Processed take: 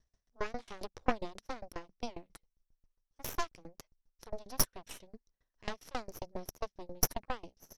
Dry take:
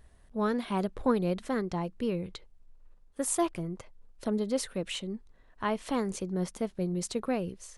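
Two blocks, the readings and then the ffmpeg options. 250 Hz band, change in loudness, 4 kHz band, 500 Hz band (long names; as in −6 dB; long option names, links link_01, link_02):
−15.5 dB, −7.5 dB, −2.5 dB, −11.5 dB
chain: -af "lowpass=frequency=5700:width_type=q:width=11,aeval=exprs='0.316*(cos(1*acos(clip(val(0)/0.316,-1,1)))-cos(1*PI/2))+0.0251*(cos(3*acos(clip(val(0)/0.316,-1,1)))-cos(3*PI/2))+0.141*(cos(6*acos(clip(val(0)/0.316,-1,1)))-cos(6*PI/2))+0.0178*(cos(7*acos(clip(val(0)/0.316,-1,1)))-cos(7*PI/2))':channel_layout=same,aeval=exprs='val(0)*pow(10,-27*if(lt(mod(7.4*n/s,1),2*abs(7.4)/1000),1-mod(7.4*n/s,1)/(2*abs(7.4)/1000),(mod(7.4*n/s,1)-2*abs(7.4)/1000)/(1-2*abs(7.4)/1000))/20)':channel_layout=same,volume=-4dB"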